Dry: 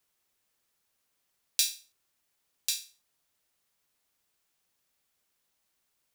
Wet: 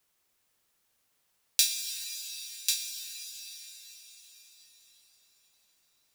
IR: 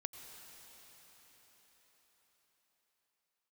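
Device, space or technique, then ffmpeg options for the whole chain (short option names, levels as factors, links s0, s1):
cathedral: -filter_complex "[1:a]atrim=start_sample=2205[s0];[0:a][s0]afir=irnorm=-1:irlink=0,volume=2"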